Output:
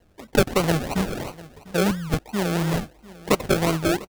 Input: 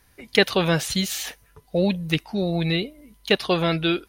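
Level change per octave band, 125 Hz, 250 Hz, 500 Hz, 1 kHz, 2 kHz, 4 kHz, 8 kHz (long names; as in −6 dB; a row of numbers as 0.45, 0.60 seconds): +0.5, 0.0, 0.0, +2.5, −3.0, −6.5, 0.0 decibels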